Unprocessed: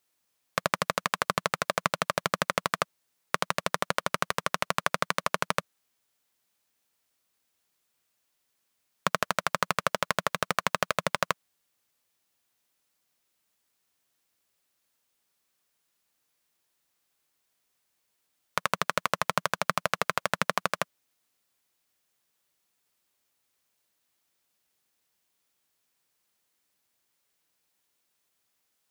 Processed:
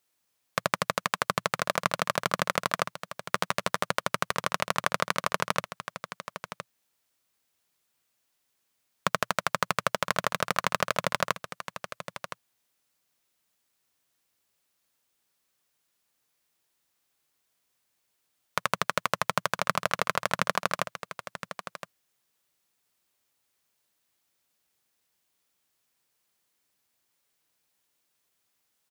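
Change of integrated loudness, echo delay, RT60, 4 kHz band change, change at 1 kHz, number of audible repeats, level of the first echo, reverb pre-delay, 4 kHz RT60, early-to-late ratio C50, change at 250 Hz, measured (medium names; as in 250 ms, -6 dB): 0.0 dB, 1016 ms, no reverb, +0.5 dB, +0.5 dB, 1, -11.5 dB, no reverb, no reverb, no reverb, +0.5 dB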